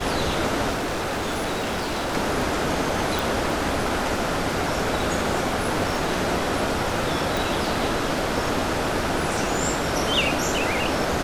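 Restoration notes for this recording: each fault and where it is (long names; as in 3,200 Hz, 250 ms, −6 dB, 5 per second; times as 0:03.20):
surface crackle 39 per second −29 dBFS
0:00.73–0:02.16: clipping −23 dBFS
0:03.19: click
0:07.37: click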